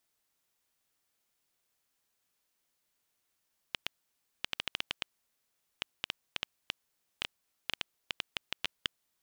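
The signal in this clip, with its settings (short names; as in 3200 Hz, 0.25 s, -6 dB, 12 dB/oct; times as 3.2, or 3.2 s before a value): random clicks 5.4/s -13.5 dBFS 5.32 s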